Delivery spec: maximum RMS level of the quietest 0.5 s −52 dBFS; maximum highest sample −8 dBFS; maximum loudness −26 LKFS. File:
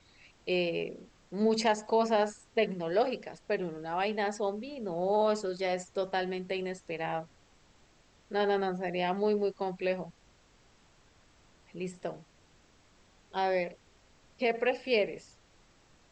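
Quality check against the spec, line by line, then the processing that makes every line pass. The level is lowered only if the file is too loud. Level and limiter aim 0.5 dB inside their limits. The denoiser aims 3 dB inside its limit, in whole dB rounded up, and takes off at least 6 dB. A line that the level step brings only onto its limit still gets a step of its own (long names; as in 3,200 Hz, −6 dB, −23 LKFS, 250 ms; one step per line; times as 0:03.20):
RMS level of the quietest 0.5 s −63 dBFS: in spec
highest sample −15.5 dBFS: in spec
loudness −32.0 LKFS: in spec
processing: no processing needed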